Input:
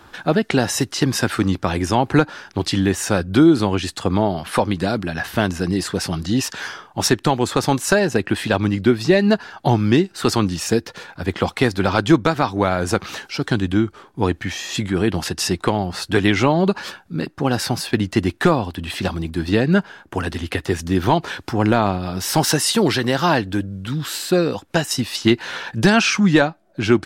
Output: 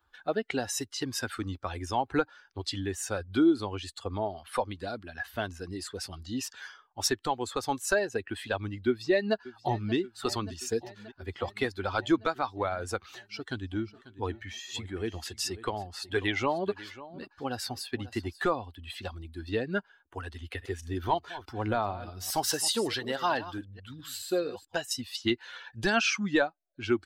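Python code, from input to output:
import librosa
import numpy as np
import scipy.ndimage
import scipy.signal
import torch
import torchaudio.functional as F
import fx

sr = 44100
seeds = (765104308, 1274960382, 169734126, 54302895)

y = fx.echo_throw(x, sr, start_s=8.87, length_s=1.08, ms=580, feedback_pct=80, wet_db=-12.0)
y = fx.echo_single(y, sr, ms=542, db=-11.5, at=(13.77, 18.42), fade=0.02)
y = fx.reverse_delay(y, sr, ms=213, wet_db=-10.0, at=(20.39, 24.78))
y = fx.bin_expand(y, sr, power=1.5)
y = fx.peak_eq(y, sr, hz=160.0, db=-14.5, octaves=0.91)
y = F.gain(torch.from_numpy(y), -6.5).numpy()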